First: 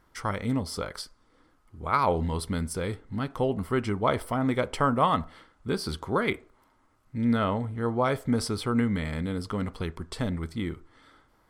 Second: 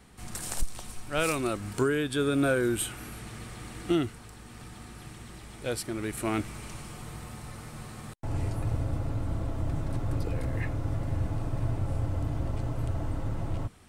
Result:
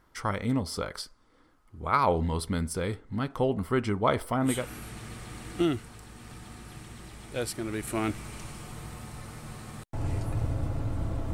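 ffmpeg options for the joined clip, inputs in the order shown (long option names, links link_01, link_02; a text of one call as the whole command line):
ffmpeg -i cue0.wav -i cue1.wav -filter_complex "[0:a]apad=whole_dur=11.33,atrim=end=11.33,atrim=end=4.7,asetpts=PTS-STARTPTS[link_01];[1:a]atrim=start=2.7:end=9.63,asetpts=PTS-STARTPTS[link_02];[link_01][link_02]acrossfade=duration=0.3:curve1=qsin:curve2=qsin" out.wav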